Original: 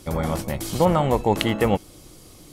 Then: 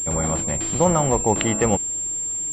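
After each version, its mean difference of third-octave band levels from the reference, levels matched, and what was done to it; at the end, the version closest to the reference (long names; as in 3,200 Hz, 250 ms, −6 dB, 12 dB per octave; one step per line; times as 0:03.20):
5.5 dB: switching amplifier with a slow clock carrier 7,400 Hz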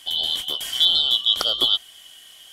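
12.5 dB: band-splitting scrambler in four parts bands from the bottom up 2413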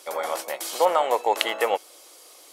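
9.0 dB: high-pass filter 500 Hz 24 dB per octave
level +1.5 dB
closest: first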